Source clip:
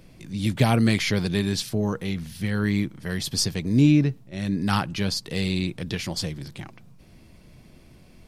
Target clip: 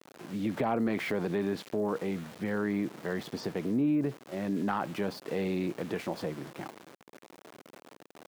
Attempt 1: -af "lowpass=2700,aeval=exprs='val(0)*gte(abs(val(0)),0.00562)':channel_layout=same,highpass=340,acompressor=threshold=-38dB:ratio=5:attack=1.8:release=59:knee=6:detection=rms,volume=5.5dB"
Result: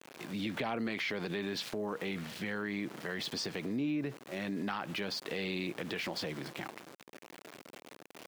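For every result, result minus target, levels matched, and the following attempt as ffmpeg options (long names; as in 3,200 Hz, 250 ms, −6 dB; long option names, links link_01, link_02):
downward compressor: peak gain reduction +8 dB; 2,000 Hz band +6.0 dB
-af "lowpass=2700,aeval=exprs='val(0)*gte(abs(val(0)),0.00562)':channel_layout=same,highpass=340,acompressor=threshold=-30dB:ratio=5:attack=1.8:release=59:knee=6:detection=rms,volume=5.5dB"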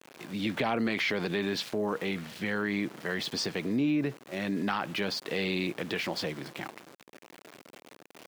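2,000 Hz band +6.0 dB
-af "lowpass=1100,aeval=exprs='val(0)*gte(abs(val(0)),0.00562)':channel_layout=same,highpass=340,acompressor=threshold=-30dB:ratio=5:attack=1.8:release=59:knee=6:detection=rms,volume=5.5dB"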